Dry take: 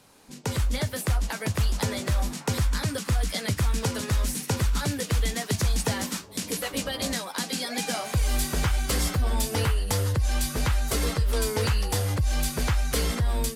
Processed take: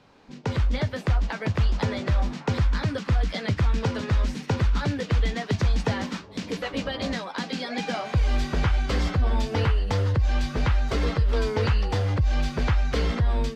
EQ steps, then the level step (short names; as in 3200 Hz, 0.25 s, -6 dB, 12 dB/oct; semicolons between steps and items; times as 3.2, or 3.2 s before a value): air absorption 200 m; +2.5 dB